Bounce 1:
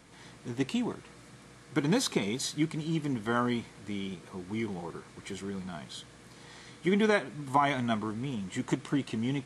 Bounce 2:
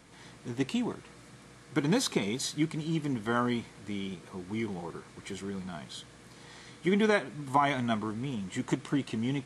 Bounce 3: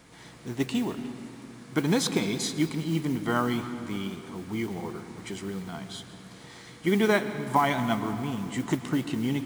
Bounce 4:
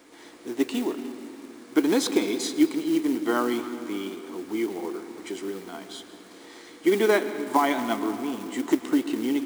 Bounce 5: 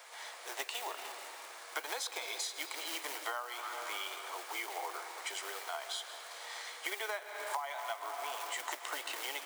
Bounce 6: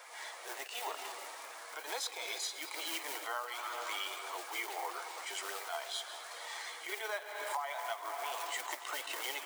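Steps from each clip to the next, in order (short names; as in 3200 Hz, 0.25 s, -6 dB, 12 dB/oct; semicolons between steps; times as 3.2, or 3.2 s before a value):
nothing audible
modulation noise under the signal 24 dB; on a send at -10.5 dB: reverb RT60 2.7 s, pre-delay 0.11 s; on the sum: gain +2.5 dB
short-mantissa float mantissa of 2-bit; resonant low shelf 210 Hz -13.5 dB, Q 3
steep high-pass 600 Hz 36 dB/oct; compressor 16:1, threshold -39 dBFS, peak gain reduction 22 dB; gain +4 dB
bin magnitudes rounded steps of 15 dB; pre-echo 31 ms -15 dB; attack slew limiter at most 100 dB/s; gain +1.5 dB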